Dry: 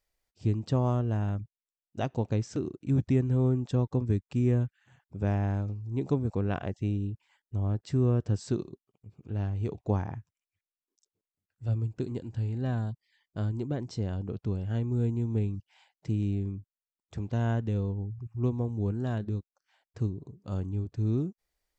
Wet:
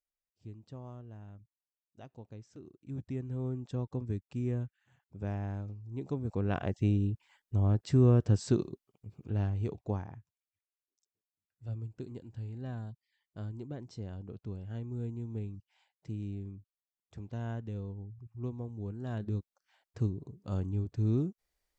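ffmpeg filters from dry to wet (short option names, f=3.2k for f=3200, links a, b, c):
-af "volume=10.5dB,afade=t=in:st=2.52:d=1.34:silence=0.266073,afade=t=in:st=6.14:d=0.71:silence=0.316228,afade=t=out:st=9.15:d=0.93:silence=0.266073,afade=t=in:st=18.99:d=0.4:silence=0.375837"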